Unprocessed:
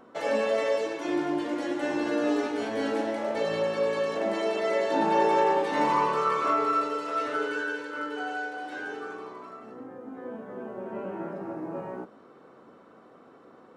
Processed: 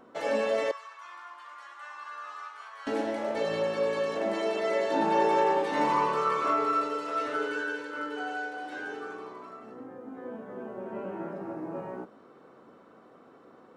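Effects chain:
0:00.71–0:02.87: four-pole ladder high-pass 1,100 Hz, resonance 80%
level −1.5 dB

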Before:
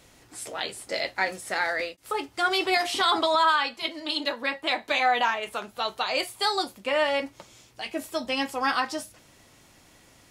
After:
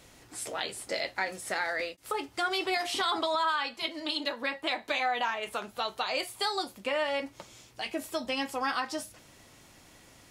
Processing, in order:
downward compressor 2 to 1, threshold −31 dBFS, peak gain reduction 7.5 dB

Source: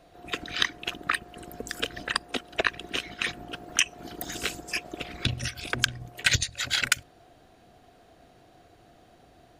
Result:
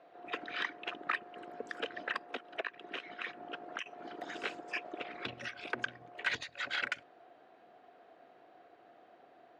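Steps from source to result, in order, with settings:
0:02.30–0:03.86: downward compressor 4 to 1, threshold −31 dBFS, peak gain reduction 12 dB
soft clipping −20.5 dBFS, distortion −7 dB
band-pass filter 400–2,100 Hz
level −1 dB

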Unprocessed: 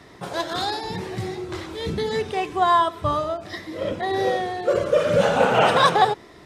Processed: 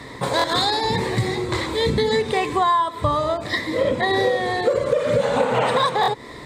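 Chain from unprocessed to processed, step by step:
EQ curve with evenly spaced ripples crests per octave 1, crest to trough 8 dB
downward compressor 10 to 1, threshold −25 dBFS, peak gain reduction 15.5 dB
hard clipping −18 dBFS, distortion −39 dB
buffer that repeats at 0:00.37/0:06.01, samples 1,024, times 2
level +9 dB

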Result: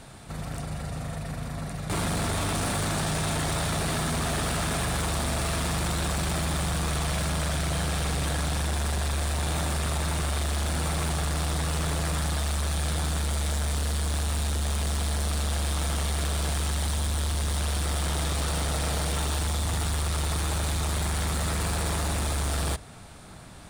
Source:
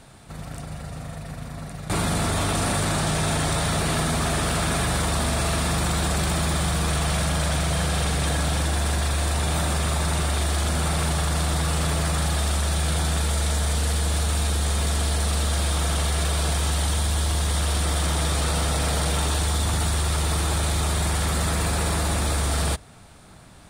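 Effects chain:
in parallel at −2 dB: brickwall limiter −19 dBFS, peak gain reduction 7 dB
on the sum: soft clipping −21 dBFS, distortion −12 dB
level −3 dB

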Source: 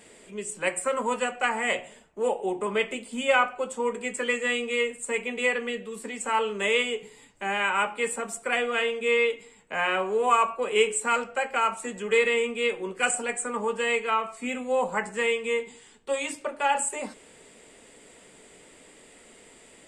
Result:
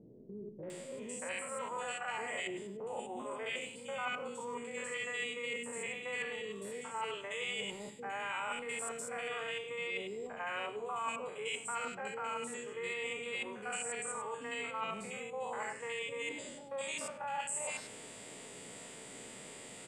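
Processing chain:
spectrum averaged block by block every 100 ms
three-band delay without the direct sound lows, mids, highs 630/700 ms, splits 400/1,800 Hz
reversed playback
downward compressor 6 to 1, threshold −42 dBFS, peak gain reduction 20 dB
reversed playback
low-shelf EQ 130 Hz −9.5 dB
on a send at −17 dB: convolution reverb RT60 1.0 s, pre-delay 4 ms
on the sum: dynamic equaliser 260 Hz, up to −5 dB, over −58 dBFS, Q 0.82
noise in a band 110–290 Hz −68 dBFS
level +5.5 dB

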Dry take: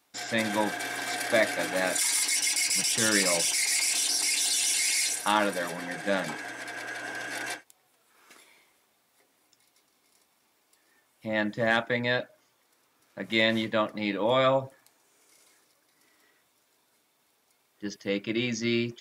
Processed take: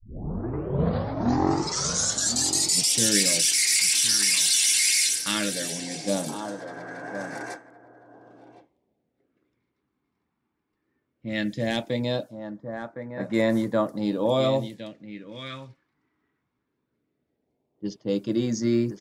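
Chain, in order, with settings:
turntable start at the beginning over 2.97 s
single-tap delay 1,062 ms −11 dB
automatic gain control gain up to 4.5 dB
low-pass that shuts in the quiet parts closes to 730 Hz, open at −22 dBFS
all-pass phaser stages 2, 0.17 Hz, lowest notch 580–2,900 Hz

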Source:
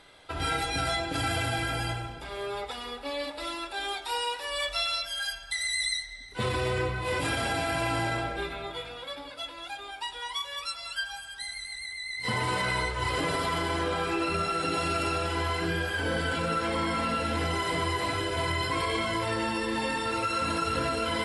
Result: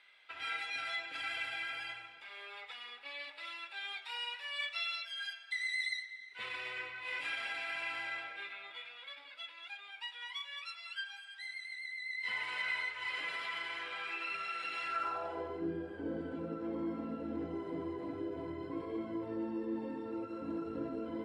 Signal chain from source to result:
band-pass filter sweep 2,300 Hz → 300 Hz, 0:14.81–0:15.63
level −2 dB

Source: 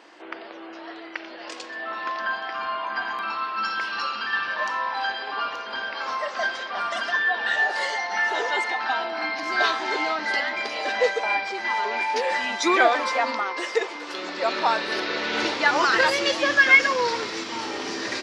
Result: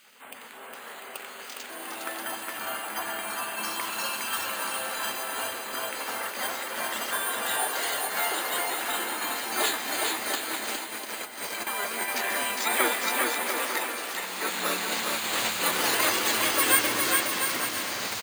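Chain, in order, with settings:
bad sample-rate conversion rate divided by 4×, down filtered, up hold
gate on every frequency bin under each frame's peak −10 dB weak
0:10.35–0:11.67: compressor whose output falls as the input rises −38 dBFS, ratio −0.5
bouncing-ball delay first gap 410 ms, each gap 0.7×, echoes 5

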